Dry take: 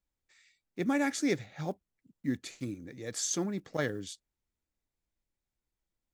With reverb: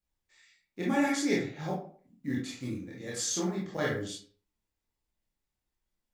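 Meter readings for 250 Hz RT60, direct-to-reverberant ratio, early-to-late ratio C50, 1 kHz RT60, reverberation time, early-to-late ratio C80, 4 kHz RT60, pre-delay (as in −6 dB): 0.50 s, −5.0 dB, 3.0 dB, 0.45 s, 0.45 s, 9.0 dB, 0.30 s, 21 ms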